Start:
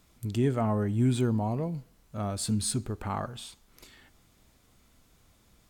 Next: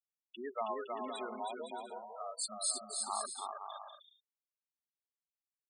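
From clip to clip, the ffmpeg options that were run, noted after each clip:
-af "highpass=760,afftfilt=real='re*gte(hypot(re,im),0.0316)':imag='im*gte(hypot(re,im),0.0316)':win_size=1024:overlap=0.75,aecho=1:1:320|512|627.2|696.3|737.8:0.631|0.398|0.251|0.158|0.1,volume=0.794"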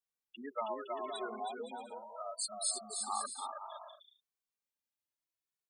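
-filter_complex "[0:a]asplit=2[s0][s1];[s1]adelay=2.2,afreqshift=0.69[s2];[s0][s2]amix=inputs=2:normalize=1,volume=1.41"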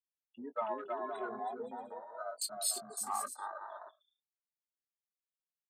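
-filter_complex "[0:a]afwtdn=0.00501,asplit=2[s0][s1];[s1]adelay=20,volume=0.251[s2];[s0][s2]amix=inputs=2:normalize=0,volume=1.12"

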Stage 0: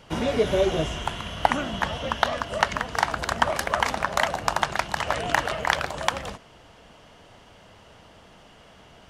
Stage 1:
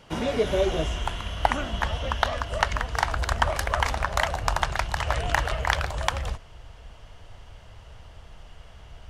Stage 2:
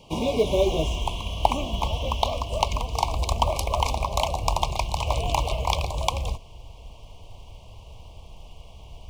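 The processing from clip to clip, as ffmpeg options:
-af "asubboost=boost=11.5:cutoff=68,volume=0.841"
-filter_complex "[0:a]asplit=2[s0][s1];[s1]acrusher=bits=5:mode=log:mix=0:aa=0.000001,volume=0.501[s2];[s0][s2]amix=inputs=2:normalize=0,asuperstop=centerf=1600:order=12:qfactor=1.4,volume=0.841"

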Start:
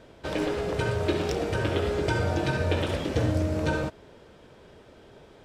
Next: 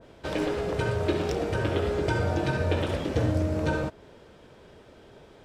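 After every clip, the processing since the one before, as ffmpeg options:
-af "adynamicequalizer=threshold=0.00708:dfrequency=1800:dqfactor=0.7:tfrequency=1800:tqfactor=0.7:attack=5:release=100:ratio=0.375:range=1.5:mode=cutabove:tftype=highshelf"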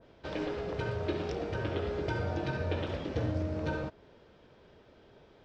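-af "lowpass=f=5700:w=0.5412,lowpass=f=5700:w=1.3066,volume=0.447"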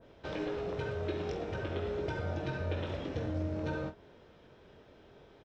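-filter_complex "[0:a]bandreject=f=4600:w=13,acompressor=threshold=0.0112:ratio=1.5,asplit=2[s0][s1];[s1]aecho=0:1:22|48:0.376|0.237[s2];[s0][s2]amix=inputs=2:normalize=0"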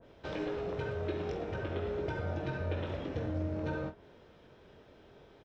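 -af "adynamicequalizer=threshold=0.00141:dfrequency=3100:dqfactor=0.7:tfrequency=3100:tqfactor=0.7:attack=5:release=100:ratio=0.375:range=2.5:mode=cutabove:tftype=highshelf"

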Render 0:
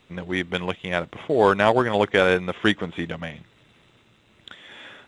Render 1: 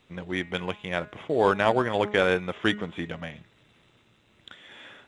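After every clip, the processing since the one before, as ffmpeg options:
-af "bandreject=f=208.5:t=h:w=4,bandreject=f=417:t=h:w=4,bandreject=f=625.5:t=h:w=4,bandreject=f=834:t=h:w=4,bandreject=f=1042.5:t=h:w=4,bandreject=f=1251:t=h:w=4,bandreject=f=1459.5:t=h:w=4,bandreject=f=1668:t=h:w=4,bandreject=f=1876.5:t=h:w=4,bandreject=f=2085:t=h:w=4,bandreject=f=2293.5:t=h:w=4,bandreject=f=2502:t=h:w=4,bandreject=f=2710.5:t=h:w=4,bandreject=f=2919:t=h:w=4,volume=0.631"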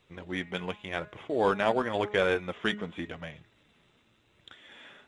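-af "flanger=delay=1.7:depth=3.5:regen=-49:speed=0.91:shape=triangular"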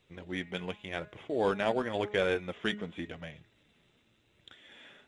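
-af "equalizer=f=1100:t=o:w=0.94:g=-5,volume=0.794"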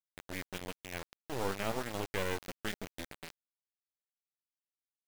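-af "acrusher=bits=3:dc=4:mix=0:aa=0.000001,volume=0.668"

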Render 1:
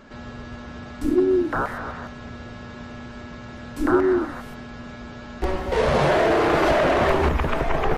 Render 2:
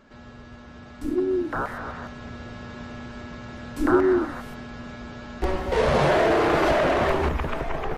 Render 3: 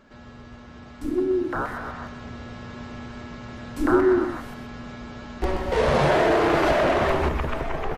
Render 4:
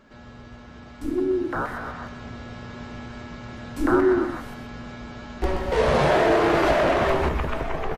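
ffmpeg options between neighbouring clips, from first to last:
-af "dynaudnorm=f=690:g=5:m=3.76,volume=0.422"
-af "aecho=1:1:126:0.299"
-filter_complex "[0:a]asplit=2[s0][s1];[s1]adelay=18,volume=0.251[s2];[s0][s2]amix=inputs=2:normalize=0"

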